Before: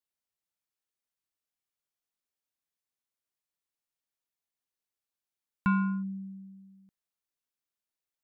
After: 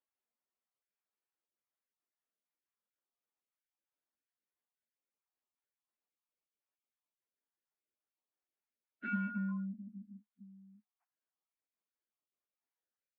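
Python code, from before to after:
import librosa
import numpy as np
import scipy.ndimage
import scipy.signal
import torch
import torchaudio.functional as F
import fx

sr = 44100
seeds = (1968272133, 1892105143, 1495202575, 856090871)

p1 = fx.spec_dropout(x, sr, seeds[0], share_pct=35)
p2 = scipy.signal.sosfilt(scipy.signal.ellip(4, 1.0, 40, 210.0, 'highpass', fs=sr, output='sos'), p1)
p3 = 10.0 ** (-34.0 / 20.0) * np.tanh(p2 / 10.0 ** (-34.0 / 20.0))
p4 = p2 + F.gain(torch.from_numpy(p3), -5.0).numpy()
p5 = scipy.ndimage.gaussian_filter1d(p4, 3.2, mode='constant')
y = fx.stretch_vocoder_free(p5, sr, factor=1.6)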